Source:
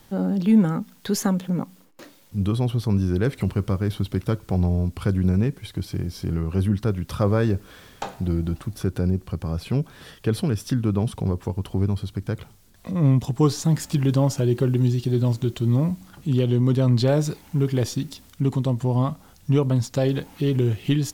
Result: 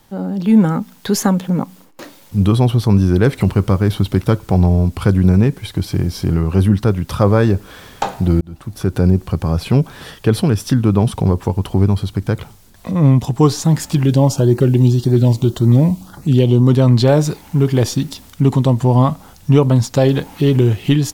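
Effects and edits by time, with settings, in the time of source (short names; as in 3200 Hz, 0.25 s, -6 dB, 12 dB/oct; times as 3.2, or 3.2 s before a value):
8.41–9.06 fade in
14.05–16.68 LFO notch saw up 1.8 Hz 890–3500 Hz
whole clip: bell 870 Hz +3.5 dB 0.73 oct; AGC gain up to 11.5 dB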